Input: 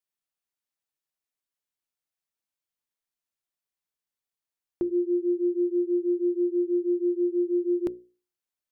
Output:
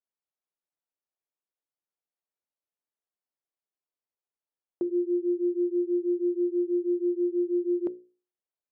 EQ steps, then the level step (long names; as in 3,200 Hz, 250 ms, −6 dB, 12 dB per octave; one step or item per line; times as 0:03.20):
resonant band-pass 510 Hz, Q 0.82
0.0 dB